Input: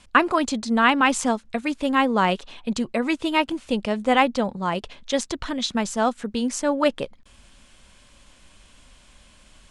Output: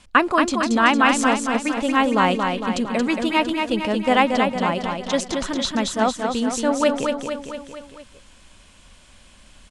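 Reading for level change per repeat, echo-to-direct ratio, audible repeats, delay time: -4.5 dB, -3.0 dB, 5, 0.228 s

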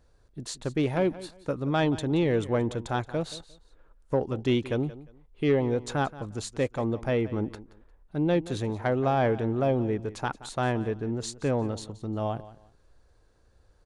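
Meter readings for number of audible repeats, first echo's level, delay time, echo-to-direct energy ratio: 2, -17.0 dB, 0.176 s, -17.0 dB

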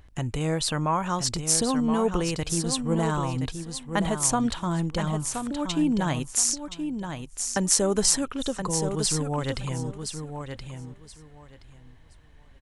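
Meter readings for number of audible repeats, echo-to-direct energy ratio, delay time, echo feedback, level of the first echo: 2, -7.5 dB, 1.023 s, 19%, -7.5 dB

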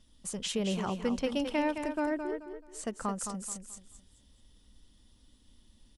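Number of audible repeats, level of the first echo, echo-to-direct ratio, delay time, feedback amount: 3, -7.5 dB, -7.0 dB, 0.216 s, 29%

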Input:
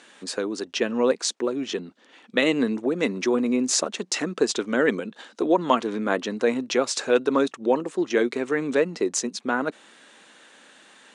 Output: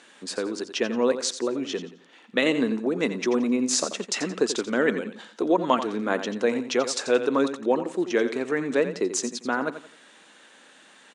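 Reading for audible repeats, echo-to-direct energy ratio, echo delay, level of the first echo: 3, -10.5 dB, 87 ms, -11.0 dB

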